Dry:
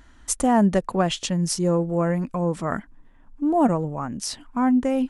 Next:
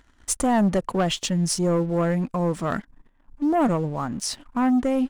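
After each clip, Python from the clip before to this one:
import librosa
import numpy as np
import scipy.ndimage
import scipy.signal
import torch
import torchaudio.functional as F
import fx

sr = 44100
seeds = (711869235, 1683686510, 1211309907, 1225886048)

y = fx.leveller(x, sr, passes=2)
y = F.gain(torch.from_numpy(y), -6.0).numpy()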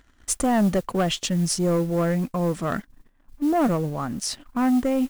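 y = fx.peak_eq(x, sr, hz=920.0, db=-5.0, octaves=0.25)
y = fx.mod_noise(y, sr, seeds[0], snr_db=26)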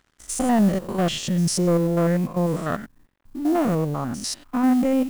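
y = fx.spec_steps(x, sr, hold_ms=100)
y = np.sign(y) * np.maximum(np.abs(y) - 10.0 ** (-58.0 / 20.0), 0.0)
y = F.gain(torch.from_numpy(y), 3.0).numpy()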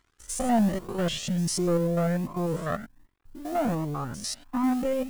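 y = fx.comb_cascade(x, sr, direction='rising', hz=1.3)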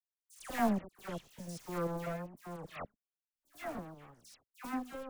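y = fx.power_curve(x, sr, exponent=3.0)
y = fx.dispersion(y, sr, late='lows', ms=101.0, hz=1900.0)
y = F.gain(torch.from_numpy(y), -1.5).numpy()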